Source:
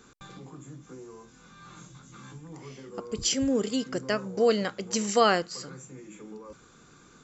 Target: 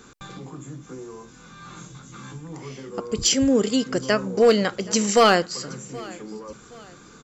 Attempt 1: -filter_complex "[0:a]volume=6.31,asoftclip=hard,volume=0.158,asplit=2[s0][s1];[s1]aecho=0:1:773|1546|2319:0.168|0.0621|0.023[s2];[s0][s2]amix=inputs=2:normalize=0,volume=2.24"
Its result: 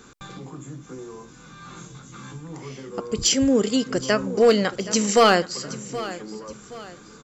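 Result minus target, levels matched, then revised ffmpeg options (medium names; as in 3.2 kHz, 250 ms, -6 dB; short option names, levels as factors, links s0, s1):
echo-to-direct +6.5 dB
-filter_complex "[0:a]volume=6.31,asoftclip=hard,volume=0.158,asplit=2[s0][s1];[s1]aecho=0:1:773|1546|2319:0.0794|0.0294|0.0109[s2];[s0][s2]amix=inputs=2:normalize=0,volume=2.24"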